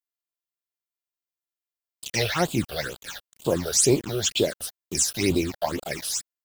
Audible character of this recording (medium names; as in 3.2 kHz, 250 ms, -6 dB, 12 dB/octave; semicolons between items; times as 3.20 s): a quantiser's noise floor 6-bit, dither none; phasing stages 8, 2.1 Hz, lowest notch 270–1900 Hz; Nellymoser